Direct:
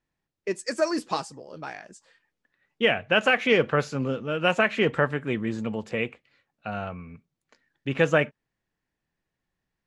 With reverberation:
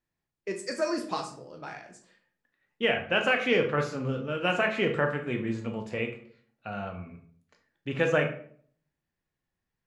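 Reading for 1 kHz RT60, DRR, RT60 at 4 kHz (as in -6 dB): 0.50 s, 4.0 dB, 0.40 s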